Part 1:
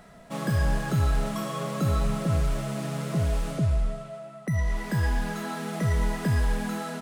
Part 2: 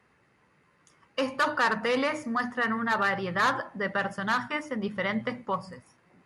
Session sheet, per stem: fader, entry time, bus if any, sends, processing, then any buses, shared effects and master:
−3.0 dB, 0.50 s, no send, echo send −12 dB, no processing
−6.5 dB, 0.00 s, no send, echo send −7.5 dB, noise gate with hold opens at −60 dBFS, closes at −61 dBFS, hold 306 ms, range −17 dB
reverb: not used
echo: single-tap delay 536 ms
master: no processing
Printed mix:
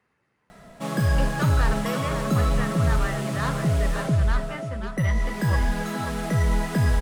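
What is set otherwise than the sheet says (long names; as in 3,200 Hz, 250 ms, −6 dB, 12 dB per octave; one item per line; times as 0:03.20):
stem 1 −3.0 dB → +3.0 dB
stem 2: missing noise gate with hold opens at −60 dBFS, closes at −61 dBFS, hold 306 ms, range −17 dB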